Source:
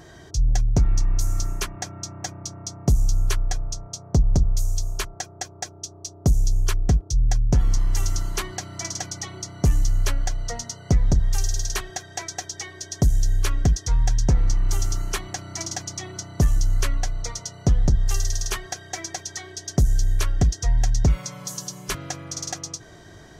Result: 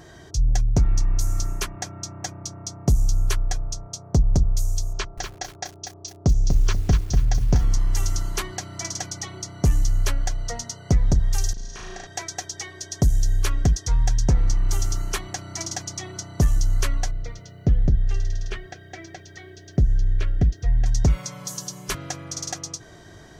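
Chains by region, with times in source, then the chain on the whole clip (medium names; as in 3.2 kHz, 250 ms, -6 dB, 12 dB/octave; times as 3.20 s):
4.93–7.65 s: low-pass 6.2 kHz 24 dB/octave + bit-crushed delay 243 ms, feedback 35%, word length 7-bit, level -5.5 dB
11.53–12.07 s: compression 10:1, threshold -31 dBFS + distance through air 100 m + flutter echo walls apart 6.4 m, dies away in 1.1 s
17.11–20.86 s: low-pass 2.4 kHz + peaking EQ 1 kHz -13.5 dB 0.88 oct + word length cut 12-bit, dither none
whole clip: none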